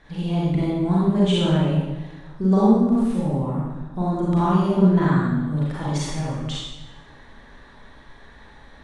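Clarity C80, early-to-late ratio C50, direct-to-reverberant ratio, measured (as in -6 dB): 1.0 dB, -3.0 dB, -7.0 dB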